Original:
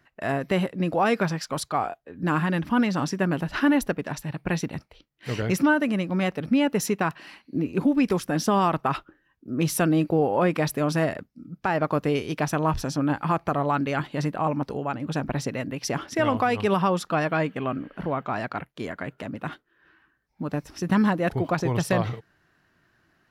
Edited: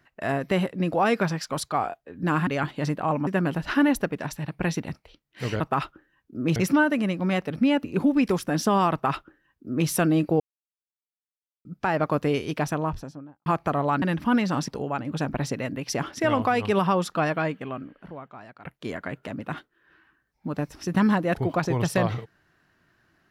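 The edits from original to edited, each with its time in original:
2.47–3.13 swap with 13.83–14.63
6.74–7.65 cut
8.73–9.69 copy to 5.46
10.21–11.46 mute
12.29–13.27 studio fade out
17.21–18.6 fade out quadratic, to -17 dB

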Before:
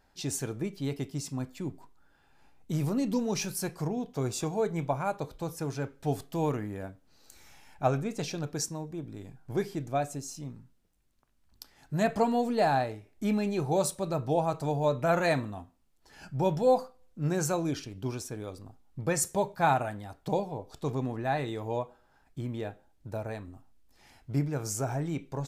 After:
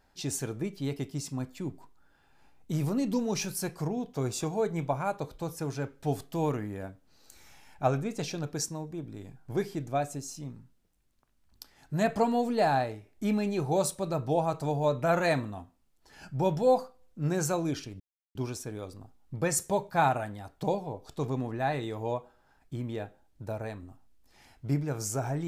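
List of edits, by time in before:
18 insert silence 0.35 s

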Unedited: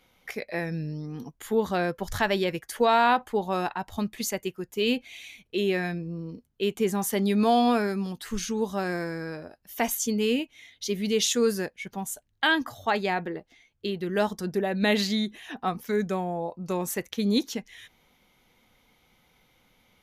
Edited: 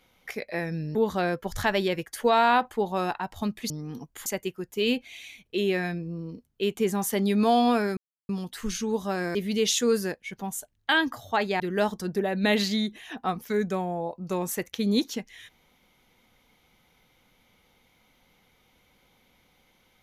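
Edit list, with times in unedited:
0.95–1.51 move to 4.26
7.97 insert silence 0.32 s
9.03–10.89 cut
13.14–13.99 cut

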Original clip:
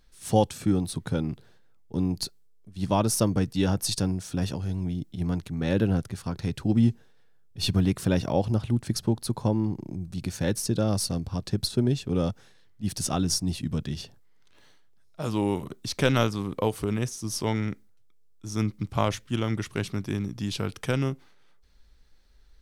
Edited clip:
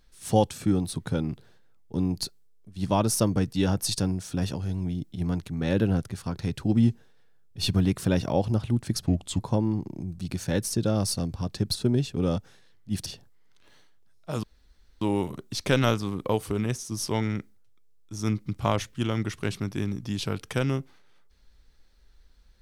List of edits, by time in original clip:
9.06–9.32 speed 78%
12.99–13.97 cut
15.34 insert room tone 0.58 s

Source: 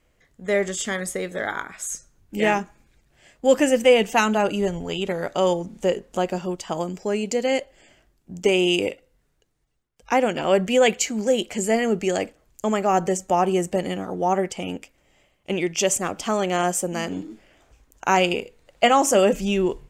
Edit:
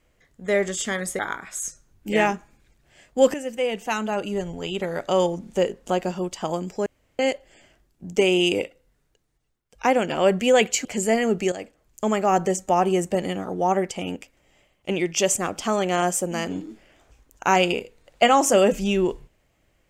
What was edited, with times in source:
1.19–1.46 cut
3.61–5.48 fade in, from -13.5 dB
7.13–7.46 room tone
11.12–11.46 cut
12.13–12.65 fade in, from -12.5 dB

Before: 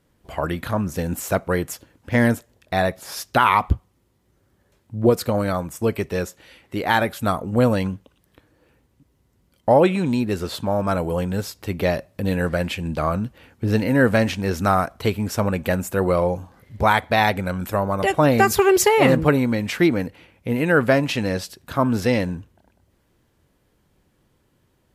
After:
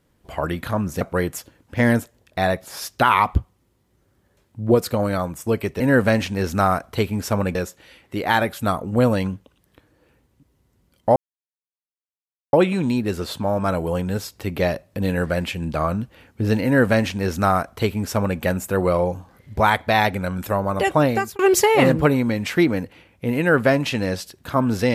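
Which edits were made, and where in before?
1.01–1.36 cut
9.76 insert silence 1.37 s
13.87–15.62 copy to 6.15
18.21–18.62 fade out

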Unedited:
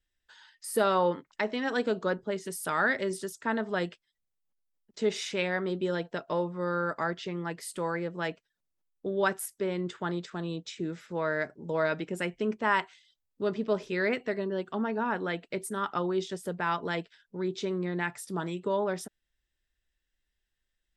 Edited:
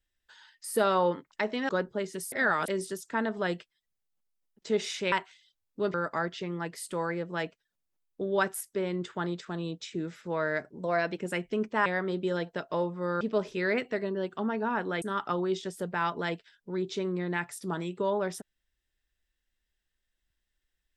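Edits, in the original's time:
1.69–2.01 cut
2.64–3 reverse
5.44–6.79 swap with 12.74–13.56
11.63–12.06 speed 108%
15.37–15.68 cut

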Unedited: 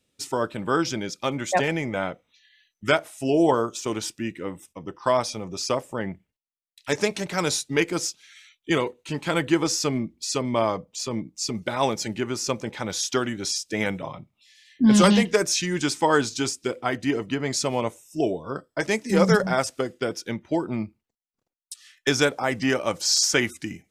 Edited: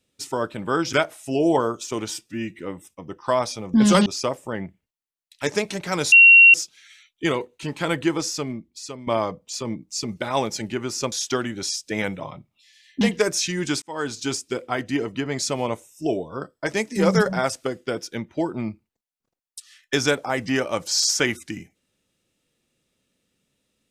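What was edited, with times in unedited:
0.93–2.87 cut
4.05–4.37 stretch 1.5×
7.58–8 bleep 2740 Hz -6.5 dBFS
9.38–10.53 fade out, to -13 dB
12.58–12.94 cut
14.83–15.15 move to 5.52
15.96–16.43 fade in

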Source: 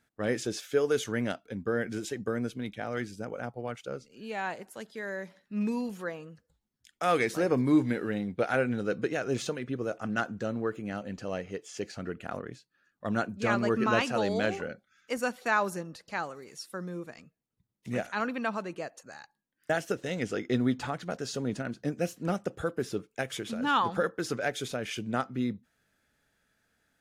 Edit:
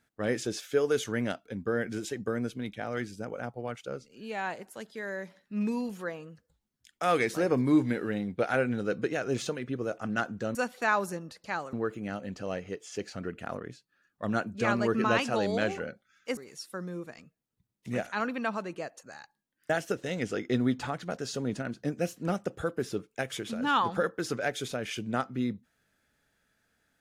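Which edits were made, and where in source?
15.19–16.37 move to 10.55

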